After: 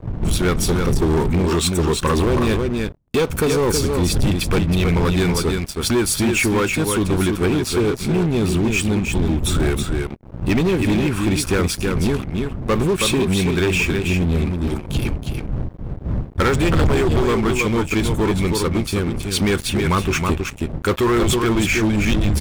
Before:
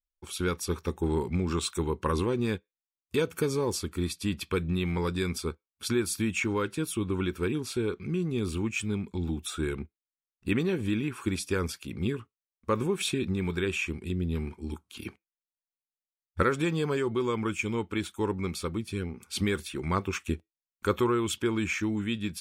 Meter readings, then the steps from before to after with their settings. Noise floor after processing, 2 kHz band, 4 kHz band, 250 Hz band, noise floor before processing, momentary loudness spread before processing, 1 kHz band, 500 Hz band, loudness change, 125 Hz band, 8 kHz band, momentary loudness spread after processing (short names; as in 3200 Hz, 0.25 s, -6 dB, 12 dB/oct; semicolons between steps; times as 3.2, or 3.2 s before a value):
-33 dBFS, +11.5 dB, +12.5 dB, +11.0 dB, under -85 dBFS, 7 LU, +11.0 dB, +10.5 dB, +11.5 dB, +13.0 dB, +13.0 dB, 6 LU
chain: wind noise 120 Hz -35 dBFS; echo 0.321 s -6.5 dB; sample leveller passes 5; gain -5 dB